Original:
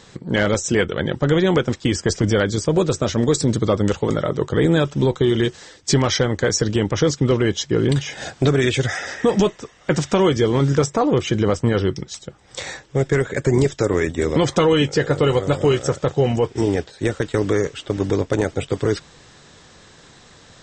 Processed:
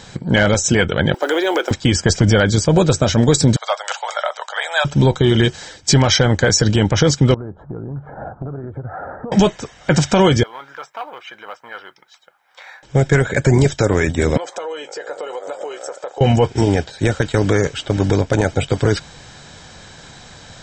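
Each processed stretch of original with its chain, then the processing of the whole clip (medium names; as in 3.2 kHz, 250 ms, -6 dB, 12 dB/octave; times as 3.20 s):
1.14–1.71 s: companding laws mixed up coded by mu + elliptic high-pass 330 Hz, stop band 60 dB + compression 2:1, threshold -20 dBFS
3.56–4.85 s: steep high-pass 640 Hz 48 dB/octave + tape noise reduction on one side only decoder only
7.34–9.32 s: elliptic low-pass 1.3 kHz, stop band 50 dB + compression, threshold -32 dBFS
10.43–12.83 s: ladder band-pass 1.4 kHz, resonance 25% + companded quantiser 8-bit + transformer saturation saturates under 970 Hz
14.37–16.21 s: high-pass 460 Hz 24 dB/octave + compression 4:1, threshold -29 dBFS + peaking EQ 3.5 kHz -10.5 dB 2.5 oct
whole clip: comb 1.3 ms, depth 38%; loudness maximiser +9.5 dB; trim -3 dB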